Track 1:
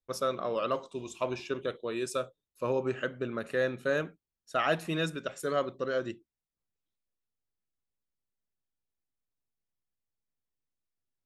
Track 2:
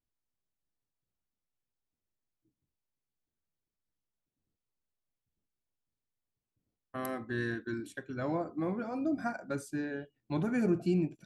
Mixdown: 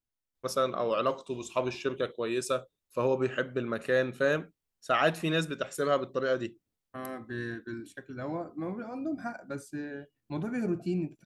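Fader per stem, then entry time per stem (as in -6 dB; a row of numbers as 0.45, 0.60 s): +2.5, -2.0 dB; 0.35, 0.00 s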